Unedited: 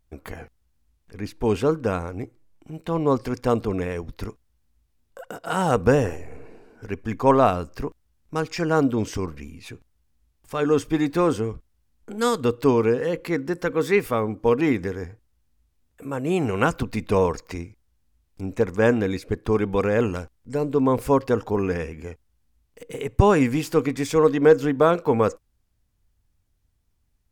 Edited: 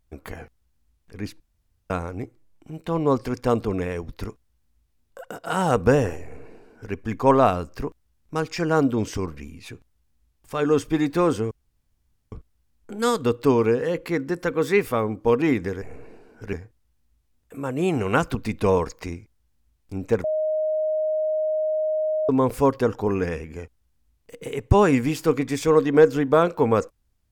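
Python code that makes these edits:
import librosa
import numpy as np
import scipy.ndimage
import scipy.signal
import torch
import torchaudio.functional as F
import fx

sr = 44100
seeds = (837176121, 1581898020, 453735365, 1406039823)

y = fx.edit(x, sr, fx.room_tone_fill(start_s=1.4, length_s=0.5),
    fx.duplicate(start_s=6.23, length_s=0.71, to_s=15.01),
    fx.insert_room_tone(at_s=11.51, length_s=0.81),
    fx.bleep(start_s=18.72, length_s=2.05, hz=622.0, db=-20.5), tone=tone)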